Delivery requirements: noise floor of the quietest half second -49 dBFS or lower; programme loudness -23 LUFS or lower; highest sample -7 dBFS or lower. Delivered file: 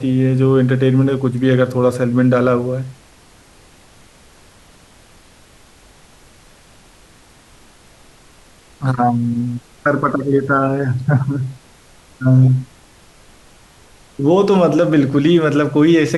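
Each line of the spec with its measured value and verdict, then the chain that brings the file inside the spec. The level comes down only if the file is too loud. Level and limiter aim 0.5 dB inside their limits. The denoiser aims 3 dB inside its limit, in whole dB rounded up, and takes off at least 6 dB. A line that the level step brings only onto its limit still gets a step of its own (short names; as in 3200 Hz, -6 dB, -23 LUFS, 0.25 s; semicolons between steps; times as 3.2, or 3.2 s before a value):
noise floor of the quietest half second -47 dBFS: fail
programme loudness -15.5 LUFS: fail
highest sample -3.5 dBFS: fail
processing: gain -8 dB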